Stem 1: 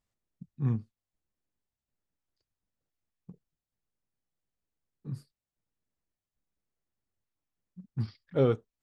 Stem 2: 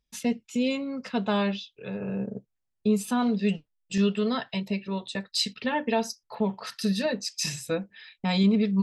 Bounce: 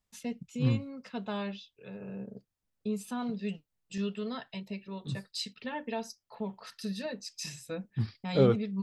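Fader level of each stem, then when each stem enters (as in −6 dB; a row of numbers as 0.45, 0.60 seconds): +1.0, −10.0 decibels; 0.00, 0.00 seconds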